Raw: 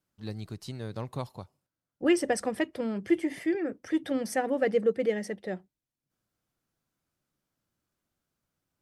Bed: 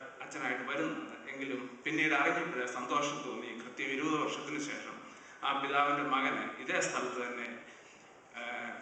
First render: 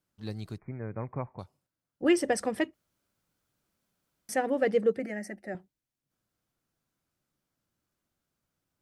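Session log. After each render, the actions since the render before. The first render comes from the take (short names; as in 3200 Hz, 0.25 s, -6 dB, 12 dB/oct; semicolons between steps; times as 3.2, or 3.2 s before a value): 0.58–1.39 brick-wall FIR low-pass 2500 Hz; 2.74–4.29 room tone; 4.99–5.55 fixed phaser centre 690 Hz, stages 8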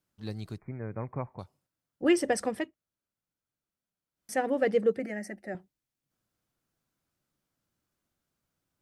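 2.48–4.4 dip -13.5 dB, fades 0.27 s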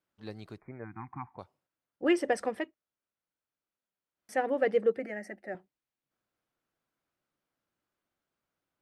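0.84–1.36 spectral delete 360–720 Hz; tone controls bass -10 dB, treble -10 dB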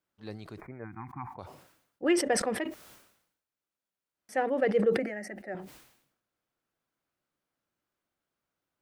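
sustainer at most 76 dB/s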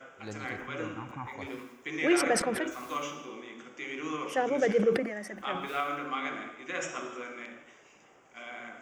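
add bed -2.5 dB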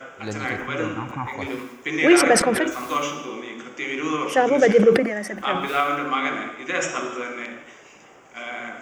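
gain +10.5 dB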